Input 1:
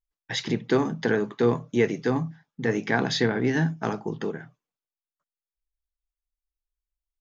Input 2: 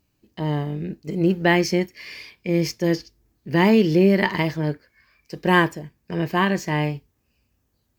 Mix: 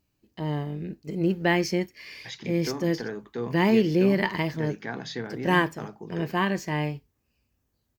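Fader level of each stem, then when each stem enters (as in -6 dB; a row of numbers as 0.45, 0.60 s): -10.5, -5.0 dB; 1.95, 0.00 s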